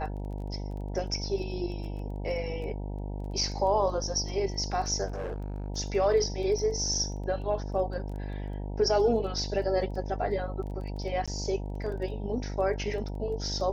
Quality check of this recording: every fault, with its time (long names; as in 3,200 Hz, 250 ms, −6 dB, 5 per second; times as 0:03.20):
mains buzz 50 Hz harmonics 19 −35 dBFS
surface crackle 14 per second −39 dBFS
0:05.06–0:05.68: clipping −30.5 dBFS
0:11.26–0:11.28: drop-out 16 ms